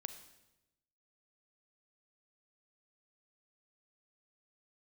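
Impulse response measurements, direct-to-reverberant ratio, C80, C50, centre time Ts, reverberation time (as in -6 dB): 9.0 dB, 12.5 dB, 10.0 dB, 12 ms, 0.95 s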